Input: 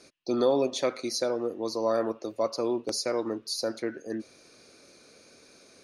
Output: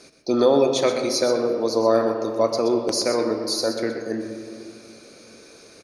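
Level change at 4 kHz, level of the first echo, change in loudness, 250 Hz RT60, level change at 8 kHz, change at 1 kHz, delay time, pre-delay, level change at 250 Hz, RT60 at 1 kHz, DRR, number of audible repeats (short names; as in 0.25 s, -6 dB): +7.5 dB, -9.5 dB, +8.0 dB, 3.1 s, +7.0 dB, +8.0 dB, 0.125 s, 5 ms, +7.5 dB, 2.6 s, 4.5 dB, 1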